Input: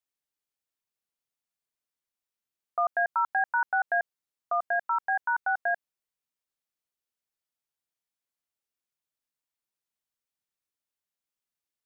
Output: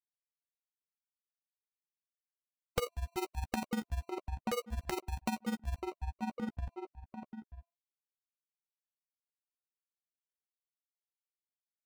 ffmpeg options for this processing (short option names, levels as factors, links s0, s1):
-filter_complex "[0:a]bandreject=f=341.3:t=h:w=4,bandreject=f=682.6:t=h:w=4,bandreject=f=1023.9:t=h:w=4,afftfilt=real='re*gte(hypot(re,im),0.0158)':imag='im*gte(hypot(re,im),0.0158)':win_size=1024:overlap=0.75,firequalizer=gain_entry='entry(470,0);entry(670,-22);entry(1100,10);entry(2300,-19)':delay=0.05:min_phase=1,acrusher=samples=26:mix=1:aa=0.000001,asplit=2[s0][s1];[s1]adelay=933,lowpass=f=1600:p=1,volume=0.158,asplit=2[s2][s3];[s3]adelay=933,lowpass=f=1600:p=1,volume=0.19[s4];[s2][s4]amix=inputs=2:normalize=0[s5];[s0][s5]amix=inputs=2:normalize=0,acompressor=threshold=0.00447:ratio=16,aeval=exprs='(mod(70.8*val(0)+1,2)-1)/70.8':c=same,tremolo=f=20:d=0.824,asplit=2[s6][s7];[s7]adelay=13,volume=0.237[s8];[s6][s8]amix=inputs=2:normalize=0,volume=6.68"